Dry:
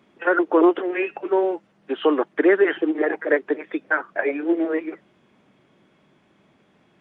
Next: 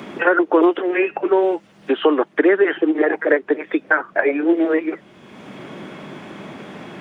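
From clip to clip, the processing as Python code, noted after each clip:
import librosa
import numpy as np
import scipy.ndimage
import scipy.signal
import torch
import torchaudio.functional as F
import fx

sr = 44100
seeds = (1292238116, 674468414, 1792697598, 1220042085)

y = fx.band_squash(x, sr, depth_pct=70)
y = y * 10.0 ** (4.0 / 20.0)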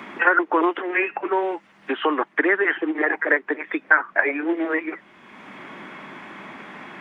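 y = fx.graphic_eq(x, sr, hz=(125, 250, 500, 1000, 2000), db=(-6, 3, -3, 8, 10))
y = y * 10.0 ** (-8.0 / 20.0)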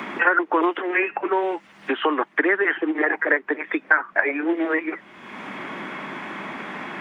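y = fx.band_squash(x, sr, depth_pct=40)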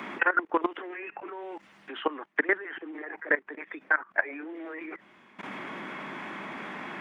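y = fx.level_steps(x, sr, step_db=18)
y = y * 10.0 ** (-3.0 / 20.0)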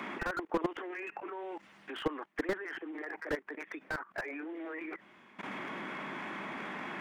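y = fx.slew_limit(x, sr, full_power_hz=38.0)
y = y * 10.0 ** (-2.0 / 20.0)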